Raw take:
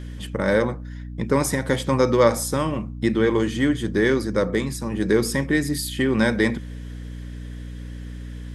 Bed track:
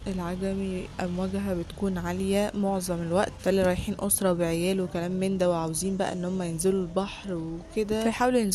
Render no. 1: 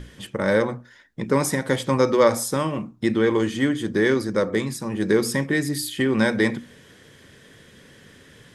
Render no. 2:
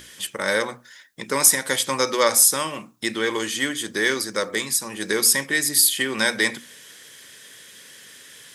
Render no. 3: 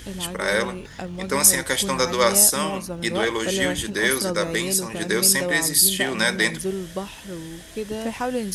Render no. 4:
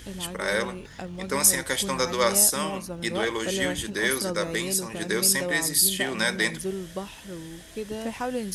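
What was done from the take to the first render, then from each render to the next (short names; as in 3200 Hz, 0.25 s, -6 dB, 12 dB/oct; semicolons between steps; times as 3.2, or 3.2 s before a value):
notches 60/120/180/240/300 Hz
tilt +4.5 dB/oct
add bed track -2.5 dB
gain -4 dB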